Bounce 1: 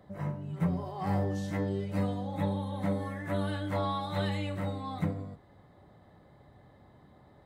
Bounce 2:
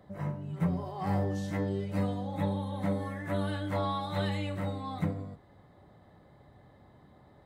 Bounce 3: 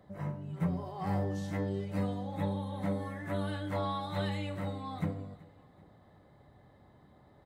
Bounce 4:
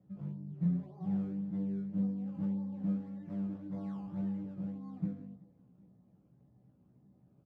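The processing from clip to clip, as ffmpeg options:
-af anull
-af "aecho=1:1:381|762|1143:0.0794|0.0373|0.0175,volume=-2.5dB"
-filter_complex "[0:a]acrusher=samples=16:mix=1:aa=0.000001:lfo=1:lforange=16:lforate=1.8,bandpass=f=180:t=q:w=2.1:csg=0,asplit=2[a][b];[b]adelay=16,volume=-3dB[c];[a][c]amix=inputs=2:normalize=0"

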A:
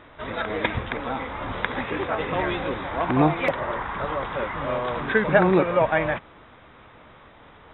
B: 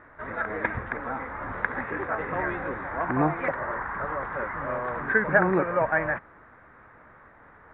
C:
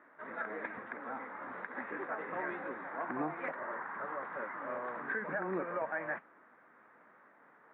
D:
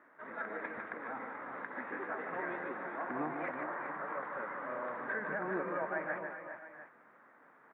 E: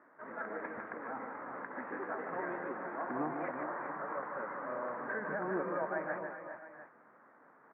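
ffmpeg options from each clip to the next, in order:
-af "highshelf=f=2.4k:t=q:w=3:g=-12,volume=-5.5dB"
-af "highpass=f=190:w=0.5412,highpass=f=190:w=1.3066,alimiter=limit=-16.5dB:level=0:latency=1:release=138,flanger=delay=3:depth=6.6:regen=-73:speed=1.1:shape=sinusoidal,volume=-5dB"
-af "aecho=1:1:150|387|410|646|700:0.501|0.237|0.299|0.133|0.2,volume=-1.5dB"
-af "lowpass=1.5k,volume=1.5dB"

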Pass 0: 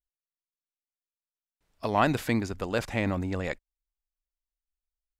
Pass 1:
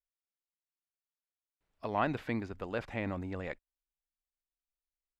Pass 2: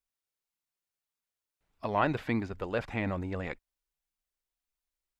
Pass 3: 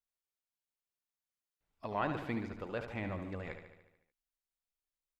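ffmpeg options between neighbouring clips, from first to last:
-filter_complex "[0:a]bass=f=250:g=-2,treble=f=4k:g=-7,acrossover=split=4300[a][b];[b]acompressor=threshold=-59dB:ratio=4:attack=1:release=60[c];[a][c]amix=inputs=2:normalize=0,volume=-7dB"
-af "flanger=delay=0.8:depth=1.4:regen=-60:speed=1.7:shape=sinusoidal,volume=8dB"
-af "aecho=1:1:73|146|219|292|365|438|511|584:0.376|0.226|0.135|0.0812|0.0487|0.0292|0.0175|0.0105,volume=-7.5dB"

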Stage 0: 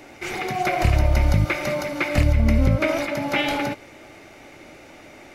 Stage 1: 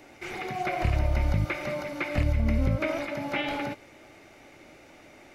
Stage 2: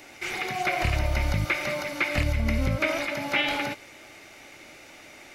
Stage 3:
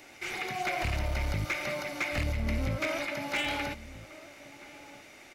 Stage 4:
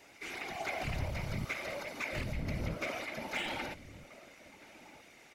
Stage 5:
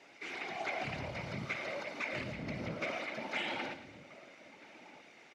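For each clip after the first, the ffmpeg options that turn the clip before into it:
-filter_complex "[0:a]acrossover=split=3900[a][b];[b]acompressor=threshold=-43dB:ratio=4:attack=1:release=60[c];[a][c]amix=inputs=2:normalize=0,volume=-7dB"
-af "tiltshelf=f=1.3k:g=-5.5,volume=4.5dB"
-filter_complex "[0:a]volume=21dB,asoftclip=hard,volume=-21dB,asplit=2[a][b];[b]adelay=1283,volume=-16dB,highshelf=f=4k:g=-28.9[c];[a][c]amix=inputs=2:normalize=0,volume=-4.5dB"
-af "afftfilt=real='hypot(re,im)*cos(2*PI*random(0))':imag='hypot(re,im)*sin(2*PI*random(1))':win_size=512:overlap=0.75"
-af "highpass=160,lowpass=5k,aecho=1:1:110|220|330|440:0.251|0.0904|0.0326|0.0117"

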